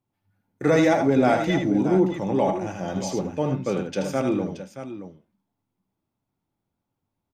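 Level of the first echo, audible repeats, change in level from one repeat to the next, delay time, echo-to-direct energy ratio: -6.5 dB, 2, no steady repeat, 79 ms, -5.5 dB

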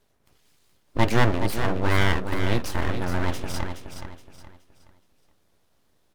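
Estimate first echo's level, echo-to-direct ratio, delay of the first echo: -8.0 dB, -7.5 dB, 0.421 s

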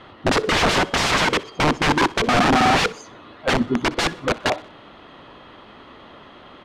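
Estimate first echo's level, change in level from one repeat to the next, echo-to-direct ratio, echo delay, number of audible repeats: -20.5 dB, -7.5 dB, -19.5 dB, 62 ms, 2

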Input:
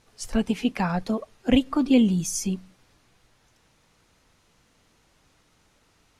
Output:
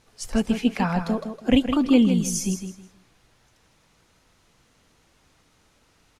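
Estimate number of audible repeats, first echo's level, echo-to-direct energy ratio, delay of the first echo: 3, -8.5 dB, -8.0 dB, 0.16 s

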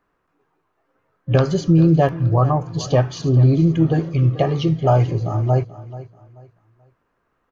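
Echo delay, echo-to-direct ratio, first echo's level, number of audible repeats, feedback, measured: 0.434 s, -16.0 dB, -16.5 dB, 2, 29%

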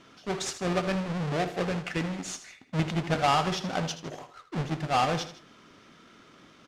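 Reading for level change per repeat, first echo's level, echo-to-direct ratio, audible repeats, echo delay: -5.0 dB, -13.0 dB, -12.0 dB, 2, 79 ms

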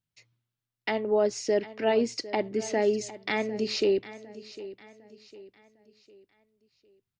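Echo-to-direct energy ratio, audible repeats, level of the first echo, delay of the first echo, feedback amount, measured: -15.5 dB, 3, -16.0 dB, 0.754 s, 40%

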